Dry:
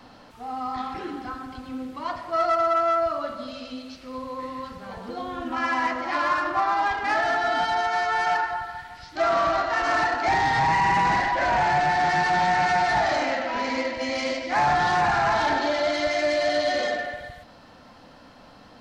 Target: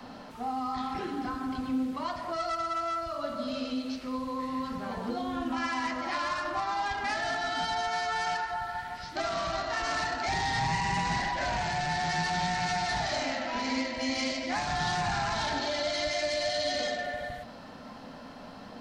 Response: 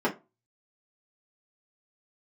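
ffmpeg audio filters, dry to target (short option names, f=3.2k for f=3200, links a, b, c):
-filter_complex "[0:a]acrossover=split=140|3000[a][b][c];[b]acompressor=threshold=-35dB:ratio=5[d];[a][d][c]amix=inputs=3:normalize=0,asplit=2[e][f];[1:a]atrim=start_sample=2205,asetrate=29547,aresample=44100[g];[f][g]afir=irnorm=-1:irlink=0,volume=-21.5dB[h];[e][h]amix=inputs=2:normalize=0,volume=1dB"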